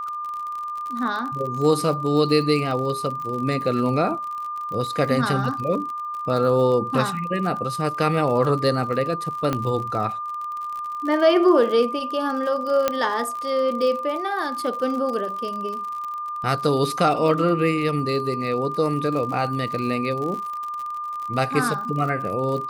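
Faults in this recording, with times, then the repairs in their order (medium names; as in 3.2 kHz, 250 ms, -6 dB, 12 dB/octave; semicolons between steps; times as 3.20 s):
crackle 52 per s -29 dBFS
whine 1.2 kHz -27 dBFS
9.53 s: pop -10 dBFS
12.88 s: pop -6 dBFS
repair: de-click; band-stop 1.2 kHz, Q 30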